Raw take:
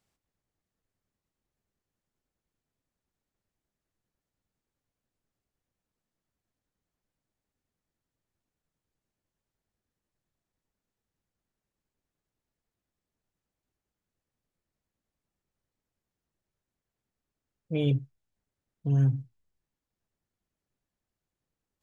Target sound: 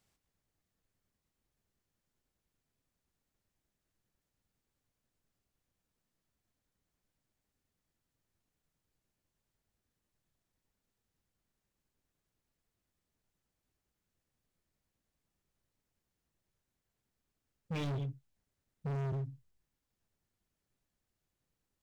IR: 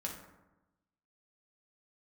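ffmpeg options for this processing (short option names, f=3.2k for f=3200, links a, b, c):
-filter_complex "[0:a]equalizer=f=520:w=0.37:g=-2.5,asplit=2[a][b];[b]aecho=0:1:138:0.178[c];[a][c]amix=inputs=2:normalize=0,alimiter=limit=-20.5dB:level=0:latency=1:release=21,asoftclip=type=hard:threshold=-37dB,volume=2.5dB"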